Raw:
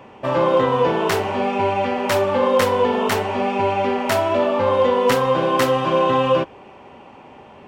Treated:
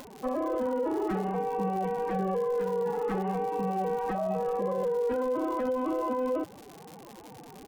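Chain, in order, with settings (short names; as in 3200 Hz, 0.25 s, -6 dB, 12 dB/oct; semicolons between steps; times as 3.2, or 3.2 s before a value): LPF 1200 Hz 12 dB/oct; formant-preserving pitch shift +11.5 st; limiter -17 dBFS, peak gain reduction 10 dB; low shelf 210 Hz +10 dB; speakerphone echo 0.18 s, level -28 dB; crackle 160/s -30 dBFS; upward compressor, threshold -34 dBFS; gain -7.5 dB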